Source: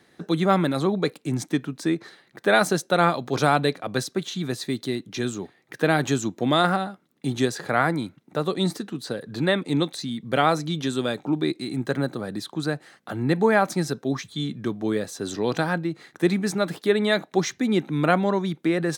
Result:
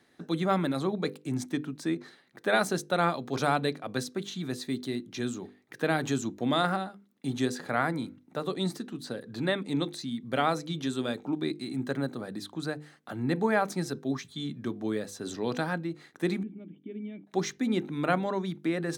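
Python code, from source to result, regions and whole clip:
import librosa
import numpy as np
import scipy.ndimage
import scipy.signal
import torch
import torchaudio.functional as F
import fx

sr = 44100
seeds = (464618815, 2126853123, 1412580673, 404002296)

y = fx.chain(x, sr, fx.formant_cascade(vowel='i'),
    fx.air_absorb(metres=330.0), at=(16.43, 17.27))
y = fx.peak_eq(y, sr, hz=250.0, db=5.5, octaves=0.22)
y = fx.hum_notches(y, sr, base_hz=50, count=10)
y = y * 10.0 ** (-6.5 / 20.0)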